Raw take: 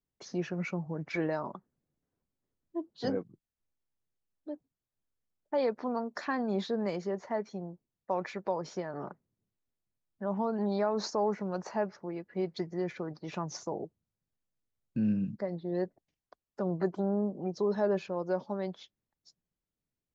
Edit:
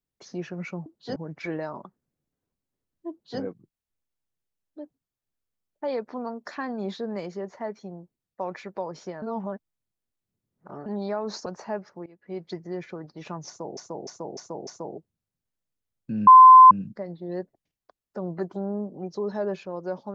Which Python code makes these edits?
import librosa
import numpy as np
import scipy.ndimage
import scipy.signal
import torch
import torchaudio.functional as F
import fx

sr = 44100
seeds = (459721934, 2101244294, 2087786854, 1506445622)

y = fx.edit(x, sr, fx.duplicate(start_s=2.81, length_s=0.3, to_s=0.86),
    fx.reverse_span(start_s=8.92, length_s=1.64),
    fx.cut(start_s=11.16, length_s=0.37),
    fx.fade_in_from(start_s=12.13, length_s=0.39, floor_db=-19.0),
    fx.repeat(start_s=13.54, length_s=0.3, count=5),
    fx.insert_tone(at_s=15.14, length_s=0.44, hz=1030.0, db=-6.0), tone=tone)